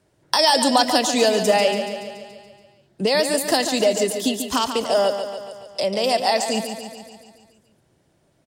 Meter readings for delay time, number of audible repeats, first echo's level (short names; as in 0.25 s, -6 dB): 0.142 s, 6, -8.5 dB